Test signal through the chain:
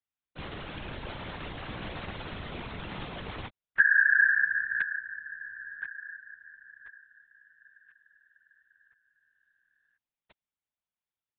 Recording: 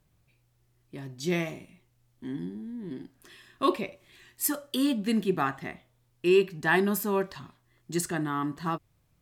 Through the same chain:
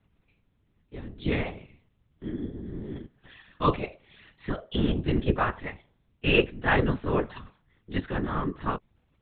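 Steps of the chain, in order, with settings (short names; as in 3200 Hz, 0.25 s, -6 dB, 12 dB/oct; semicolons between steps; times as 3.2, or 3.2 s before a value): monotone LPC vocoder at 8 kHz 140 Hz; whisperiser; gain +1.5 dB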